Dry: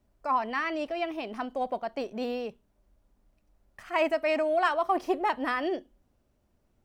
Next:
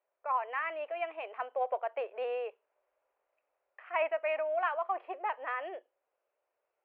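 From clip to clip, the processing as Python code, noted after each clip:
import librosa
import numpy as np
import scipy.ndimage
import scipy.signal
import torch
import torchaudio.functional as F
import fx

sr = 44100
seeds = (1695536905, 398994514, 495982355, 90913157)

y = scipy.signal.sosfilt(scipy.signal.ellip(3, 1.0, 40, [480.0, 2600.0], 'bandpass', fs=sr, output='sos'), x)
y = fx.rider(y, sr, range_db=10, speed_s=2.0)
y = y * librosa.db_to_amplitude(-5.0)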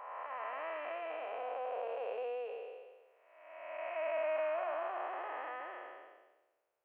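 y = fx.spec_blur(x, sr, span_ms=697.0)
y = y * librosa.db_to_amplitude(2.5)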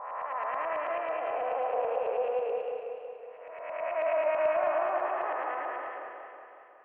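y = fx.filter_lfo_lowpass(x, sr, shape='saw_up', hz=9.2, low_hz=890.0, high_hz=2800.0, q=1.1)
y = fx.echo_warbled(y, sr, ms=184, feedback_pct=65, rate_hz=2.8, cents=51, wet_db=-5.5)
y = y * librosa.db_to_amplitude(6.5)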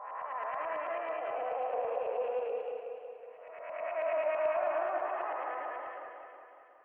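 y = fx.spec_quant(x, sr, step_db=15)
y = y * librosa.db_to_amplitude(-3.5)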